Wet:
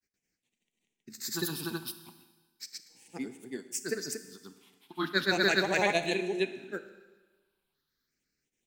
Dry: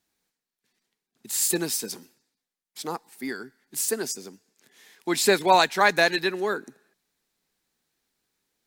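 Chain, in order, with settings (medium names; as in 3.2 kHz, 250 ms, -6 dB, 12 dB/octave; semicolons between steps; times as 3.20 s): phase shifter stages 6, 0.37 Hz, lowest notch 450–1400 Hz; granulator, grains 24 per s, spray 256 ms, pitch spread up and down by 0 st; Schroeder reverb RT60 1.3 s, combs from 25 ms, DRR 11 dB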